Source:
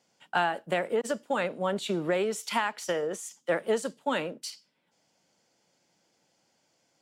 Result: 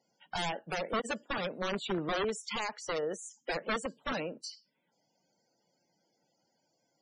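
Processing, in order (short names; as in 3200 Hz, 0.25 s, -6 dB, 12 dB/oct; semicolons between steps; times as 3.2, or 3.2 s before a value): wrapped overs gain 22 dB; loudest bins only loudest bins 64; gain -3 dB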